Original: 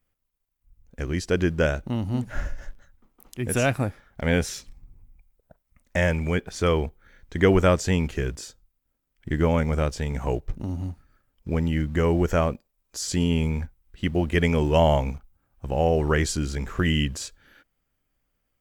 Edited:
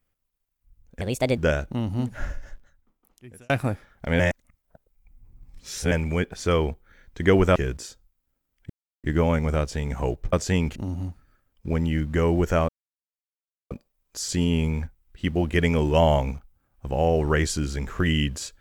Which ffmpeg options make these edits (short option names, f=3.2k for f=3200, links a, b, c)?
-filter_complex "[0:a]asplit=11[a][b][c][d][e][f][g][h][i][j][k];[a]atrim=end=1.014[l];[b]atrim=start=1.01:end=1.53,asetpts=PTS-STARTPTS,asetrate=62622,aresample=44100,atrim=end_sample=16149,asetpts=PTS-STARTPTS[m];[c]atrim=start=1.526:end=3.65,asetpts=PTS-STARTPTS,afade=t=out:st=0.644:d=1.48[n];[d]atrim=start=3.65:end=4.352,asetpts=PTS-STARTPTS,afade=t=in:d=0.004:c=hsin[o];[e]atrim=start=4.348:end=6.072,asetpts=PTS-STARTPTS,areverse[p];[f]atrim=start=6.068:end=7.712[q];[g]atrim=start=8.138:end=9.28,asetpts=PTS-STARTPTS,afade=t=out:st=1.138:d=0.004:c=hsin,apad=pad_dur=0.34[r];[h]atrim=start=9.28:end=10.572,asetpts=PTS-STARTPTS,afade=t=in:d=0.004:c=hsin[s];[i]atrim=start=7.708:end=8.142[t];[j]atrim=start=10.568:end=12.5,asetpts=PTS-STARTPTS,afade=t=out:st=1.928:d=0.004:c=hsin,apad=pad_dur=1.02[u];[k]atrim=start=12.5,asetpts=PTS-STARTPTS,afade=t=in:d=0.004:c=hsin[v];[l][m]acrossfade=d=0.004:c1=hsin:c2=hsin[w];[n][o]concat=n=2:v=0:a=1[x];[w][x]acrossfade=d=0.004:c1=hsin:c2=hsin[y];[y][p]acrossfade=d=0.004:c1=hsin:c2=hsin[z];[z][q]acrossfade=d=0.004:c1=hsin:c2=hsin[aa];[r][s]concat=n=2:v=0:a=1[ab];[aa][ab]acrossfade=d=0.004:c1=hsin:c2=hsin[ac];[ac][t]acrossfade=d=0.004:c1=hsin:c2=hsin[ad];[u][v]concat=n=2:v=0:a=1[ae];[ad][ae]acrossfade=d=0.004:c1=hsin:c2=hsin"